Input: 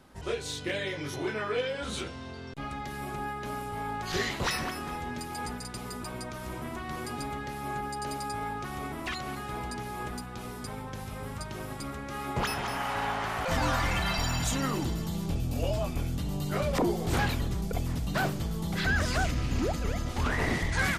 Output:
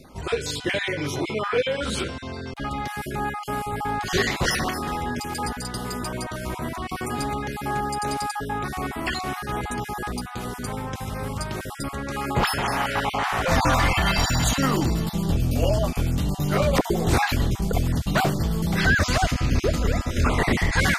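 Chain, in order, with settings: random spectral dropouts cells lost 21%; reverse; upward compressor, threshold -40 dBFS; reverse; gain +8.5 dB

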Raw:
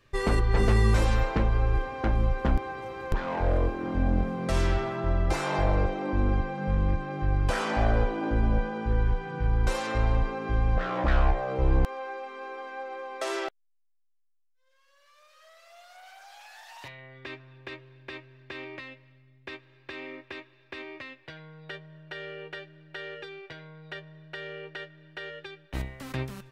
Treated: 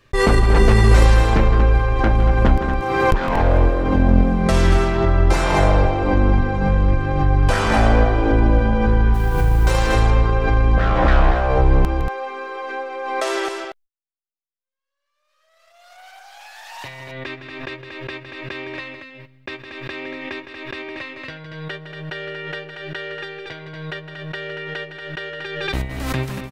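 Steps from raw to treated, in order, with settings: 9.14–9.71 level-crossing sampler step -45 dBFS; gate -49 dBFS, range -42 dB; loudspeakers at several distances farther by 55 m -10 dB, 80 m -8 dB; backwards sustainer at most 36 dB/s; gain +8.5 dB

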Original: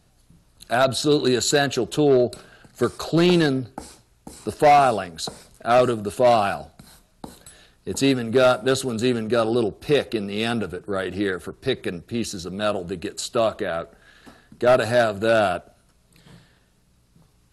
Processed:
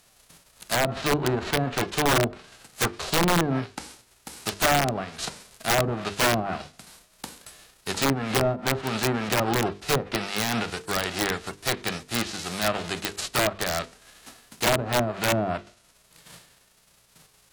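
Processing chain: spectral whitening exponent 0.3; treble ducked by the level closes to 550 Hz, closed at -13.5 dBFS; notches 50/100/150/200/250/300/350/400/450/500 Hz; wrapped overs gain 14.5 dB

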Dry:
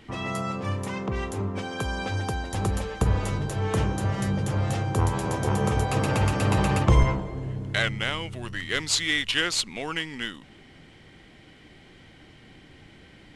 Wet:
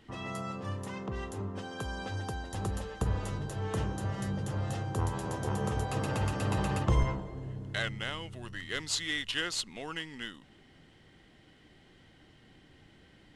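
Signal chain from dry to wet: notch 2300 Hz, Q 9.2; gain -8 dB

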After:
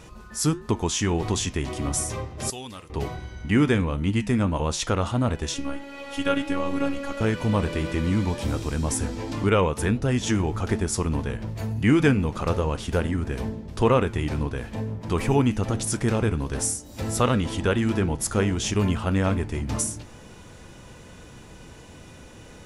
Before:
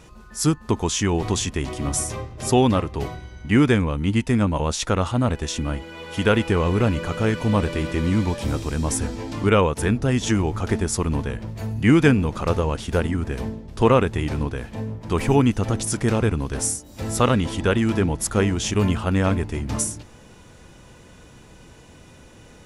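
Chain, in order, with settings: 5.54–7.21 robotiser 280 Hz; flange 1.5 Hz, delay 8.5 ms, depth 4.7 ms, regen -81%; in parallel at +0.5 dB: compressor, threshold -36 dBFS, peak gain reduction 19.5 dB; 2.5–2.9 on the sum: pre-emphasis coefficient 0.9

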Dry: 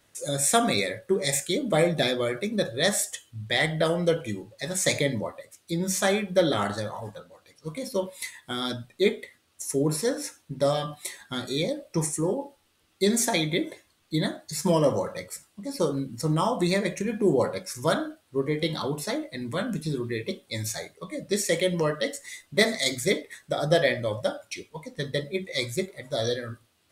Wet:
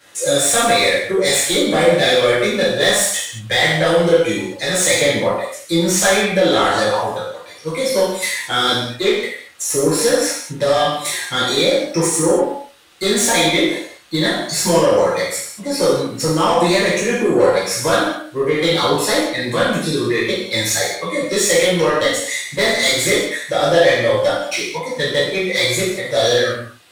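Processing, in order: compressor 2.5:1, threshold -25 dBFS, peak gain reduction 7 dB; overdrive pedal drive 19 dB, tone 5900 Hz, clips at -11 dBFS; non-linear reverb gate 0.26 s falling, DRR -8 dB; gain -1.5 dB

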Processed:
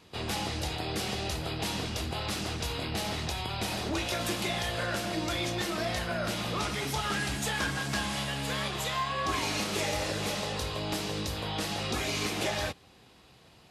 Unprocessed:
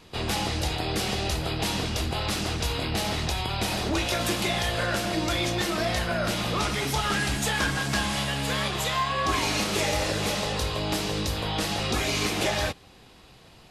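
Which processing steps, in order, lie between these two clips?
HPF 59 Hz; gain -5 dB

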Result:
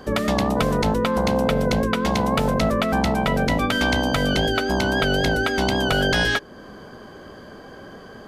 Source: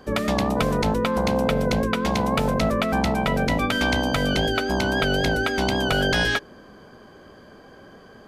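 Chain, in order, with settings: notch 2400 Hz, Q 18; in parallel at 0 dB: compressor, threshold -35 dBFS, peak gain reduction 16 dB

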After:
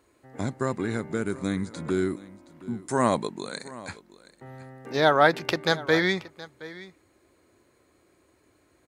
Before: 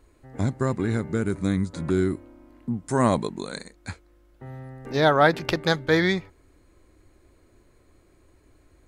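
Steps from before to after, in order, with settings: HPF 95 Hz 12 dB/oct; low shelf 230 Hz -7.5 dB; echo 0.721 s -18.5 dB

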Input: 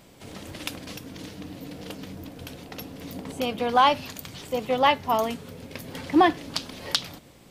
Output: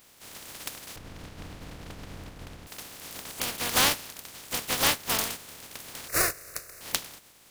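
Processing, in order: spectral contrast lowered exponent 0.2; 0.96–2.67 RIAA curve playback; 6.08–6.81 fixed phaser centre 880 Hz, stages 6; gain -4 dB

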